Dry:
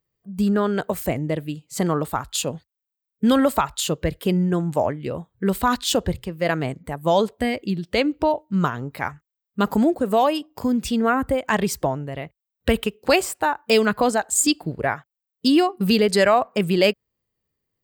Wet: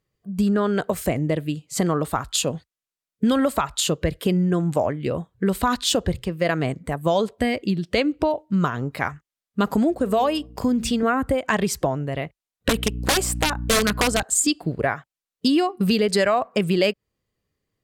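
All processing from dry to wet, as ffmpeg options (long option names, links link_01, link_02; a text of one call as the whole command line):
ffmpeg -i in.wav -filter_complex "[0:a]asettb=1/sr,asplit=3[link_01][link_02][link_03];[link_01]atrim=end=9.894[link_04];[link_02]atrim=start=9.89:end=11.03,asetpts=PTS-STARTPTS,afade=type=in:duration=0.004:curve=qsin,afade=type=out:start_time=1.136:duration=0.004:curve=qsin,bandreject=frequency=228.8:width_type=h:width=4,bandreject=frequency=457.6:width_type=h:width=4,aeval=exprs='val(0)+0.00447*(sin(2*PI*60*n/s)+sin(2*PI*2*60*n/s)/2+sin(2*PI*3*60*n/s)/3+sin(2*PI*4*60*n/s)/4+sin(2*PI*5*60*n/s)/5)':channel_layout=same[link_05];[link_03]atrim=start=11.026[link_06];[link_04][link_05]acrossfade=duration=0.004:curve1=hsin:curve2=qsin[link_07];[link_07][link_06]acrossfade=duration=0.004:curve1=qsin:curve2=hsin,asettb=1/sr,asplit=3[link_08][link_09][link_10];[link_08]atrim=end=12.694[link_11];[link_09]atrim=start=12.69:end=14.23,asetpts=PTS-STARTPTS,afade=type=in:duration=0.004:curve=qsin,afade=type=out:start_time=1.536:duration=0.004:curve=qsin,highshelf=frequency=6600:gain=4.5,aeval=exprs='(mod(3.76*val(0)+1,2)-1)/3.76':channel_layout=same,aeval=exprs='val(0)+0.0316*(sin(2*PI*60*n/s)+sin(2*PI*2*60*n/s)/2+sin(2*PI*3*60*n/s)/3+sin(2*PI*4*60*n/s)/4+sin(2*PI*5*60*n/s)/5)':channel_layout=same[link_12];[link_10]atrim=start=14.226[link_13];[link_11][link_12]acrossfade=duration=0.004:curve1=hsin:curve2=qsin[link_14];[link_14][link_13]acrossfade=duration=0.004:curve1=qsin:curve2=hsin,lowpass=12000,bandreject=frequency=880:width=12,acompressor=threshold=-23dB:ratio=2.5,volume=4dB" out.wav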